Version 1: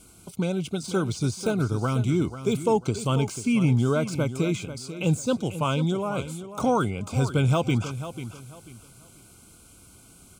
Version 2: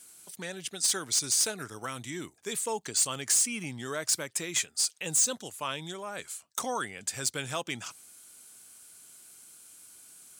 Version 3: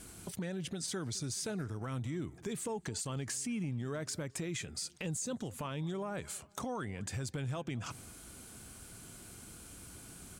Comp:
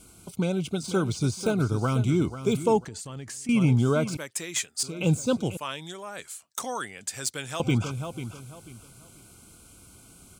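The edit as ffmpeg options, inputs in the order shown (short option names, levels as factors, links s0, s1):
-filter_complex "[1:a]asplit=2[s0][s1];[0:a]asplit=4[s2][s3][s4][s5];[s2]atrim=end=2.852[s6];[2:a]atrim=start=2.848:end=3.492[s7];[s3]atrim=start=3.488:end=4.172[s8];[s0]atrim=start=4.168:end=4.832[s9];[s4]atrim=start=4.828:end=5.572[s10];[s1]atrim=start=5.568:end=7.602[s11];[s5]atrim=start=7.598[s12];[s6][s7]acrossfade=d=0.004:c1=hsin:c2=hsin[s13];[s13][s8]acrossfade=d=0.004:c1=hsin:c2=hsin[s14];[s14][s9]acrossfade=d=0.004:c1=hsin:c2=hsin[s15];[s15][s10]acrossfade=d=0.004:c1=hsin:c2=hsin[s16];[s16][s11]acrossfade=d=0.004:c1=hsin:c2=hsin[s17];[s17][s12]acrossfade=d=0.004:c1=hsin:c2=hsin"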